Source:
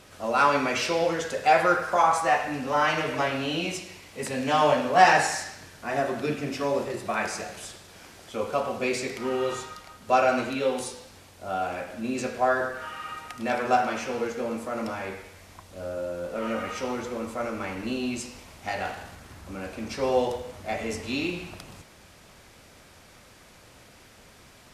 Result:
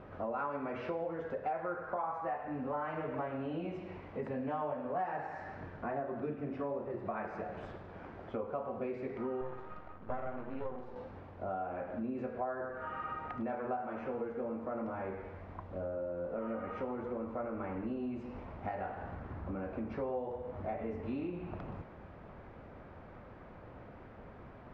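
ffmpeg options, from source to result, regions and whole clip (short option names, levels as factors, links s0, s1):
-filter_complex "[0:a]asettb=1/sr,asplit=3[s0][s1][s2];[s0]atrim=end=9.414[s3];[s1]atrim=start=9.41:end=10.96,asetpts=PTS-STARTPTS,afade=t=in:d=0.004:c=qsin,afade=t=out:st=1.546:d=0.004:c=qsin,equalizer=f=8100:w=0.65:g=-5.5,aeval=exprs='max(val(0),0)':c=same[s4];[s2]atrim=start=10.956[s5];[s3][s4]acrossfade=d=0.004:c1=hsin:c2=qsin[s6];[s6][s5]acrossfade=d=0.004:c1=qsin:c2=hsin,lowpass=1300,aemphasis=mode=reproduction:type=75kf,acompressor=threshold=0.01:ratio=5,volume=1.5"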